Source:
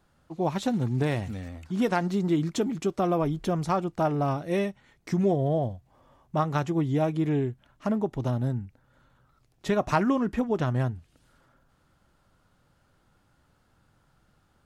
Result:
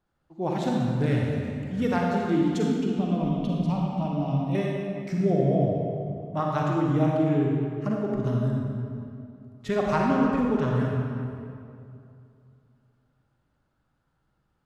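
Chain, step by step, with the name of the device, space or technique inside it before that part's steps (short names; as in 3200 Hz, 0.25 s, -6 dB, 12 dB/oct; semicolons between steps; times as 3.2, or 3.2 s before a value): spectral noise reduction 10 dB; 2.69–4.55 EQ curve 150 Hz 0 dB, 240 Hz +9 dB, 350 Hz -12 dB, 940 Hz -5 dB, 1500 Hz -23 dB, 2900 Hz +3 dB, 7000 Hz -10 dB; swimming-pool hall (reverb RT60 2.6 s, pre-delay 37 ms, DRR -2 dB; high shelf 5100 Hz -7 dB); gain -2 dB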